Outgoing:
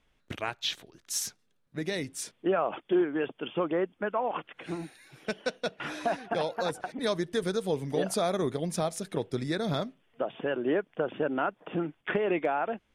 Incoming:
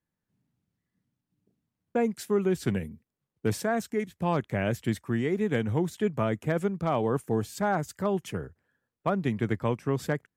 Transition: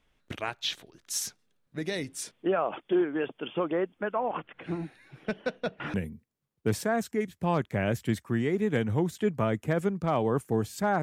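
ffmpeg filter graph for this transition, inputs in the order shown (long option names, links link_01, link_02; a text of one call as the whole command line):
ffmpeg -i cue0.wav -i cue1.wav -filter_complex "[0:a]asettb=1/sr,asplit=3[link_01][link_02][link_03];[link_01]atrim=end=4.164[link_04];[link_02]atrim=start=4.16:end=5.94,asetpts=PTS-STARTPTS,afade=type=in:duration=0.004:curve=qsin,afade=type=out:start_time=1.776:duration=0.004:curve=qsin,bass=frequency=250:gain=6,treble=frequency=4000:gain=-13[link_05];[link_03]atrim=start=5.936[link_06];[link_04][link_05]acrossfade=duration=0.004:curve1=hsin:curve2=qsin[link_07];[link_07][link_06]acrossfade=duration=0.004:curve1=qsin:curve2=hsin,apad=whole_dur=11.02,atrim=end=11.02,atrim=end=5.942[link_08];[1:a]atrim=start=2.728:end=7.81[link_09];[link_08][link_09]acrossfade=duration=0.004:curve1=hsin:curve2=hsin" out.wav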